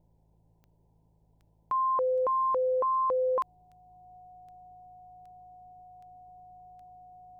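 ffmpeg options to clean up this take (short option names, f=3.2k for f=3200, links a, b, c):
-af "adeclick=t=4,bandreject=f=54.1:t=h:w=4,bandreject=f=108.2:t=h:w=4,bandreject=f=162.3:t=h:w=4,bandreject=f=730:w=30,agate=range=-21dB:threshold=-58dB"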